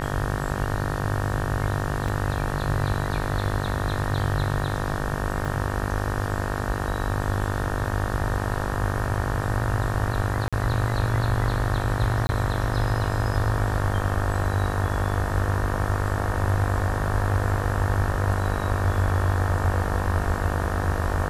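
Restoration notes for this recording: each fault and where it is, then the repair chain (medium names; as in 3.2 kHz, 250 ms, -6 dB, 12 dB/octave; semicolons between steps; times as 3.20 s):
buzz 50 Hz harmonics 37 -29 dBFS
2.08 s: dropout 4.3 ms
5.45 s: dropout 3.7 ms
10.48–10.53 s: dropout 46 ms
12.27–12.29 s: dropout 20 ms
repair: de-hum 50 Hz, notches 37; interpolate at 2.08 s, 4.3 ms; interpolate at 5.45 s, 3.7 ms; interpolate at 10.48 s, 46 ms; interpolate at 12.27 s, 20 ms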